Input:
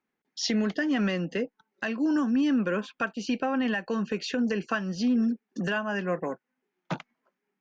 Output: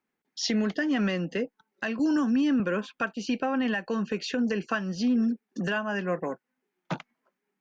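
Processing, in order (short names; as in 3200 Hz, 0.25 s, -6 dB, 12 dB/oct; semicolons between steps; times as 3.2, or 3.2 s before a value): 1.99–2.6 three-band squash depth 70%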